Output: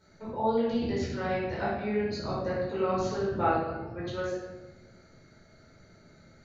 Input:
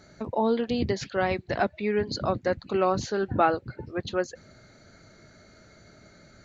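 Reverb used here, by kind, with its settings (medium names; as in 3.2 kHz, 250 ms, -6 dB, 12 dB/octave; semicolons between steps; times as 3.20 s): simulated room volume 590 m³, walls mixed, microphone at 4.6 m; trim -15 dB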